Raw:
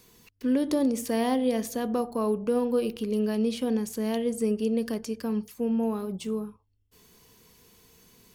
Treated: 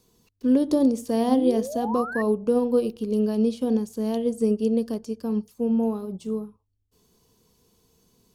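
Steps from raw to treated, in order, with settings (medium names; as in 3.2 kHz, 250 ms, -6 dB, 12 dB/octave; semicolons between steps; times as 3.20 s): peaking EQ 2 kHz -12 dB 1.2 oct; painted sound rise, 1.28–2.22 s, 220–1900 Hz -34 dBFS; treble shelf 11 kHz -10 dB; upward expansion 1.5:1, over -40 dBFS; trim +6 dB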